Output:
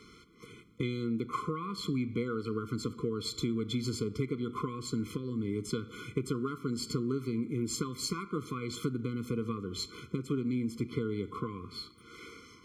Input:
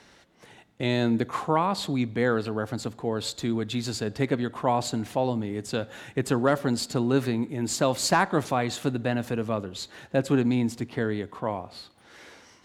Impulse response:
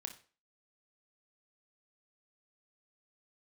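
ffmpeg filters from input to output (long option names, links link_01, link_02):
-filter_complex "[0:a]asplit=2[link_01][link_02];[1:a]atrim=start_sample=2205,asetrate=36162,aresample=44100,highshelf=frequency=4900:gain=-9.5[link_03];[link_02][link_03]afir=irnorm=-1:irlink=0,volume=-3.5dB[link_04];[link_01][link_04]amix=inputs=2:normalize=0,acompressor=threshold=-28dB:ratio=16,afftfilt=real='re*eq(mod(floor(b*sr/1024/500),2),0)':imag='im*eq(mod(floor(b*sr/1024/500),2),0)':win_size=1024:overlap=0.75"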